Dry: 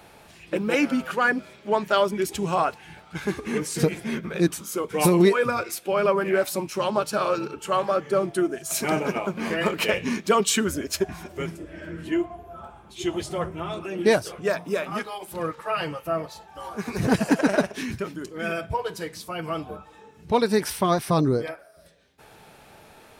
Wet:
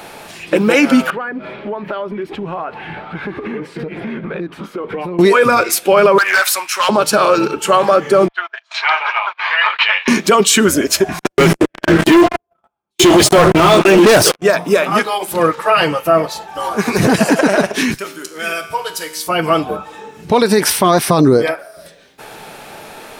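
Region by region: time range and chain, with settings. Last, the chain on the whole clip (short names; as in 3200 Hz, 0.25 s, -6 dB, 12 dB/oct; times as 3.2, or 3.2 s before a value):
1.1–5.19 G.711 law mismatch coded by mu + compressor 8:1, threshold -34 dBFS + air absorption 440 m
6.18–6.89 resonant high-pass 1400 Hz, resonance Q 1.7 + hard clip -24.5 dBFS
8.28–10.08 elliptic band-pass 910–3900 Hz, stop band 60 dB + gate -43 dBFS, range -24 dB
11.19–14.42 gate -37 dBFS, range -38 dB + sample leveller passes 5
17.94–19.27 tilt +3 dB/oct + resonator 78 Hz, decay 1.2 s, mix 70%
whole clip: bell 63 Hz -13.5 dB 2 oct; maximiser +17.5 dB; gain -1 dB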